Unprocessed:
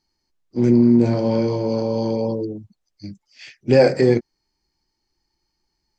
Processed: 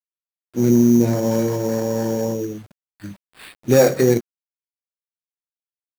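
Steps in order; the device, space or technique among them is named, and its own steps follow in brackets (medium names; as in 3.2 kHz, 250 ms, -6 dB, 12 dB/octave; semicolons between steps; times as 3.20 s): early 8-bit sampler (sample-rate reducer 6.2 kHz, jitter 0%; bit crusher 8-bit)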